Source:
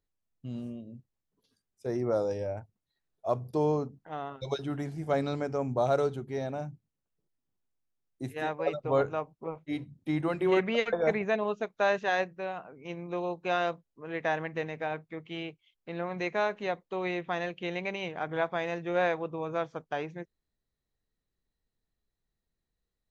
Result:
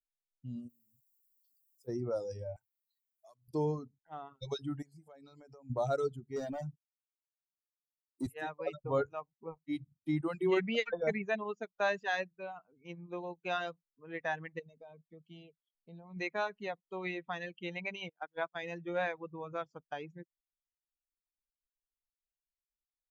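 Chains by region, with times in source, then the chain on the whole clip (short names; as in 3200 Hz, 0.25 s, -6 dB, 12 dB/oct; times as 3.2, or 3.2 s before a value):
0.68–1.87 compressor 2.5:1, threshold -58 dBFS + added noise blue -70 dBFS
2.56–3.48 compressor 10:1, threshold -41 dBFS + tilt +4.5 dB/oct
4.82–5.7 low shelf 180 Hz -7.5 dB + compressor 8:1, threshold -40 dBFS
6.36–8.27 HPF 180 Hz + sample leveller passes 2 + mismatched tape noise reduction encoder only
14.59–16.17 bell 1700 Hz -14.5 dB 1.5 oct + comb 4.6 ms, depth 38% + compressor 4:1, threshold -38 dBFS
18.09–18.63 HPF 190 Hz 6 dB/oct + gate -34 dBFS, range -18 dB
whole clip: per-bin expansion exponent 1.5; reverb removal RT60 0.66 s; dynamic EQ 700 Hz, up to -4 dB, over -39 dBFS, Q 0.74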